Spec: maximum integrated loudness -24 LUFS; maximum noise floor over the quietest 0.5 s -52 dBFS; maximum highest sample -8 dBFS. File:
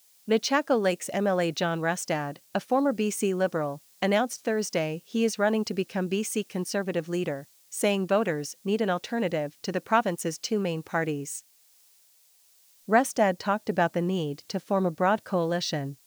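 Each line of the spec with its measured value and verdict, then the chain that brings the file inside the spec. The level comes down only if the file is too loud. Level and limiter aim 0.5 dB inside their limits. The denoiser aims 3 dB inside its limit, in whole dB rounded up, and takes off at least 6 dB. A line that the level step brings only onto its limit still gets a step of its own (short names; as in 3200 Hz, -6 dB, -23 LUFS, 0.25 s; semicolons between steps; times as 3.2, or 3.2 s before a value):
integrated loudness -27.5 LUFS: OK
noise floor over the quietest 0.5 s -61 dBFS: OK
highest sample -9.0 dBFS: OK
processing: none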